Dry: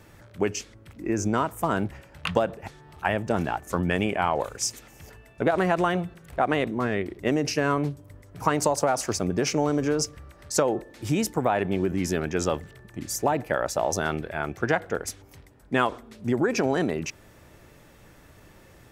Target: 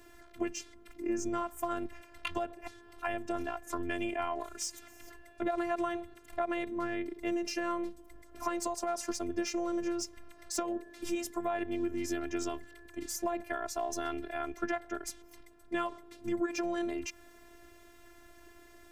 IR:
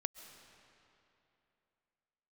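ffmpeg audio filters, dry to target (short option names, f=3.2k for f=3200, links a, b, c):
-filter_complex "[0:a]acrossover=split=130[a][b];[b]acompressor=threshold=-32dB:ratio=2[c];[a][c]amix=inputs=2:normalize=0,acrossover=split=2800[d][e];[e]asoftclip=type=tanh:threshold=-26dB[f];[d][f]amix=inputs=2:normalize=0,afftfilt=real='hypot(re,im)*cos(PI*b)':imag='0':win_size=512:overlap=0.75"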